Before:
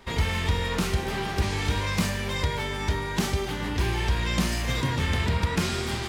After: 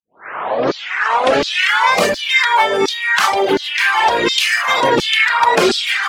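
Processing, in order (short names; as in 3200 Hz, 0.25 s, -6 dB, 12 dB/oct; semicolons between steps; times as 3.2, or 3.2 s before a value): tape start at the beginning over 1.93 s; high shelf 4300 Hz -11 dB; LFO high-pass saw down 1.4 Hz 350–4700 Hz; reverb removal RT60 1.2 s; maximiser +19.5 dB; gain -1 dB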